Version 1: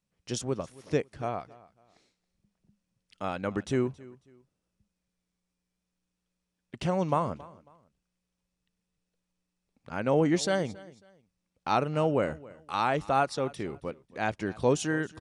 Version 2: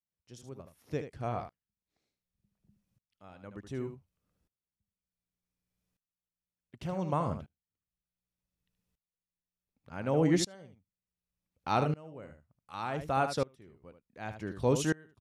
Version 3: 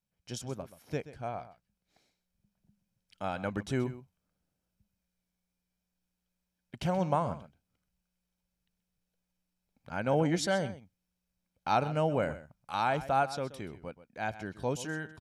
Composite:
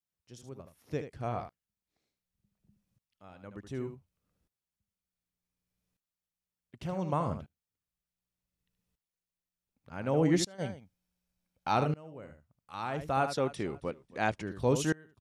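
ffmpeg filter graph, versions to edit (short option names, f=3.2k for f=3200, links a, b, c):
-filter_complex "[1:a]asplit=3[a][b][c];[a]atrim=end=10.62[d];[2:a]atrim=start=10.58:end=11.75[e];[b]atrim=start=11.71:end=13.372[f];[0:a]atrim=start=13.368:end=14.422[g];[c]atrim=start=14.418[h];[d][e]acrossfade=d=0.04:c1=tri:c2=tri[i];[i][f]acrossfade=d=0.04:c1=tri:c2=tri[j];[j][g]acrossfade=d=0.004:c1=hsin:c2=hsin[k];[k][h]acrossfade=d=0.004:c1=hsin:c2=hsin"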